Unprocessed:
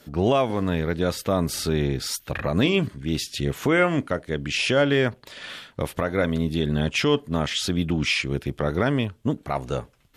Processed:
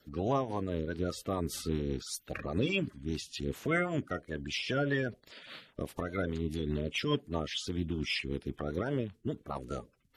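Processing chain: coarse spectral quantiser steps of 30 dB; rotary cabinet horn 5 Hz; trim -8 dB

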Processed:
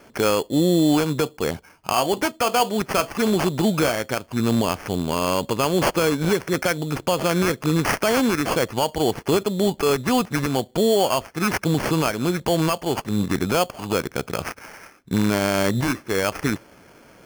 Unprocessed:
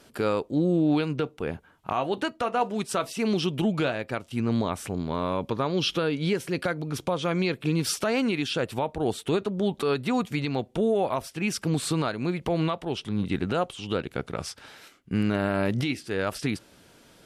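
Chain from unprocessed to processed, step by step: local Wiener filter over 9 samples; bass shelf 390 Hz -6 dB; in parallel at 0 dB: peak limiter -22.5 dBFS, peak gain reduction 8.5 dB; on the sum: sample-rate reducer 3.8 kHz, jitter 0%; trim +4 dB

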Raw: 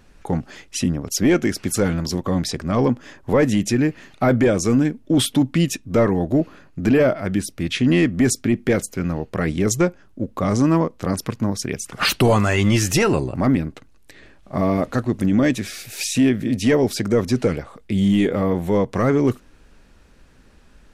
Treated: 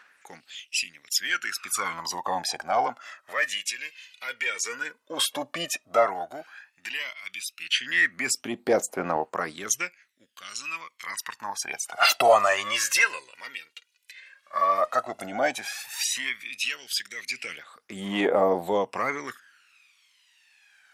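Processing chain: LFO high-pass sine 0.31 Hz 740–2800 Hz; phaser 0.11 Hz, delay 2.2 ms, feedback 66%; bass shelf 360 Hz +8 dB; trim -5 dB

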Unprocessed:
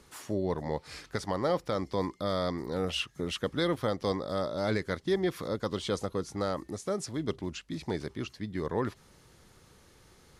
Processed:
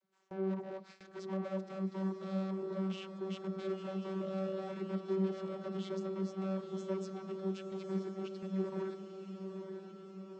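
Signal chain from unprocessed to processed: valve stage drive 40 dB, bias 0.5; flange 0.69 Hz, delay 1.2 ms, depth 3.9 ms, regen -71%; vocoder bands 32, saw 191 Hz; gate with hold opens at -53 dBFS; on a send: echo that smears into a reverb 940 ms, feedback 61%, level -7.5 dB; on the sum: trim +10 dB

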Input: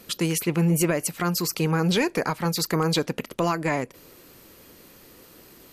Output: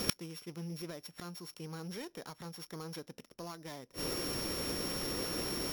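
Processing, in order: sorted samples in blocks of 8 samples; inverted gate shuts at -25 dBFS, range -34 dB; trim +13 dB

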